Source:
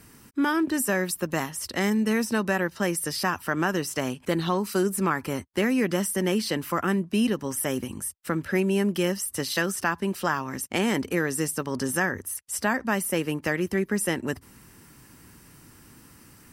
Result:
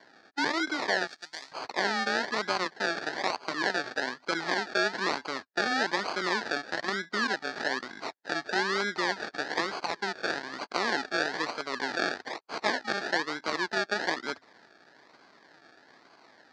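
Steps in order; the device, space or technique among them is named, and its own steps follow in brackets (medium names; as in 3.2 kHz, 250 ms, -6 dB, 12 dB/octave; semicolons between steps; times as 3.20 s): band-stop 1.3 kHz, Q 15; circuit-bent sampling toy (decimation with a swept rate 34×, swing 60% 1.1 Hz; cabinet simulation 510–5600 Hz, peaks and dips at 530 Hz -5 dB, 1.7 kHz +9 dB, 2.8 kHz -7 dB, 4.5 kHz +7 dB); 1.07–1.52 s: pre-emphasis filter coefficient 0.9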